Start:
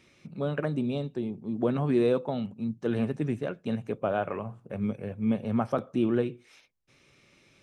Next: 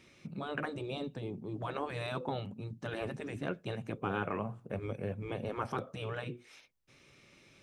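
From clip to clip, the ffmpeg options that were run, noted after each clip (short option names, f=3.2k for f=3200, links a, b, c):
-af "afftfilt=real='re*lt(hypot(re,im),0.158)':imag='im*lt(hypot(re,im),0.158)':win_size=1024:overlap=0.75"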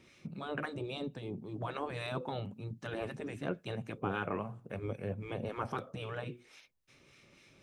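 -filter_complex "[0:a]acrossover=split=1100[a][b];[a]aeval=exprs='val(0)*(1-0.5/2+0.5/2*cos(2*PI*3.7*n/s))':c=same[c];[b]aeval=exprs='val(0)*(1-0.5/2-0.5/2*cos(2*PI*3.7*n/s))':c=same[d];[c][d]amix=inputs=2:normalize=0,volume=1.5dB"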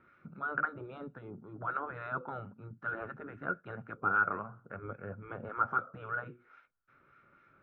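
-af "lowpass=f=1.4k:t=q:w=15,volume=-6dB"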